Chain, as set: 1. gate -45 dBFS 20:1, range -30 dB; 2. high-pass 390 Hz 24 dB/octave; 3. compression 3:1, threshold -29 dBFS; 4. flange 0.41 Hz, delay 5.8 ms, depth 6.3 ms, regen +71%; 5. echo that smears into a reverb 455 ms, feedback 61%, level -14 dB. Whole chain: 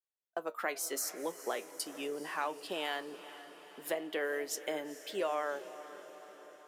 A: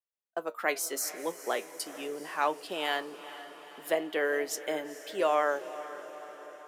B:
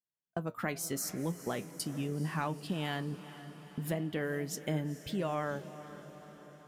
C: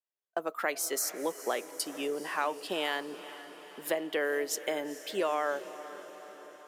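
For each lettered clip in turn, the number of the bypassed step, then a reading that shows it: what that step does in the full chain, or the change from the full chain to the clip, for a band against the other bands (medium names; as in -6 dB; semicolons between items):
3, momentary loudness spread change +1 LU; 2, 125 Hz band +29.5 dB; 4, loudness change +4.5 LU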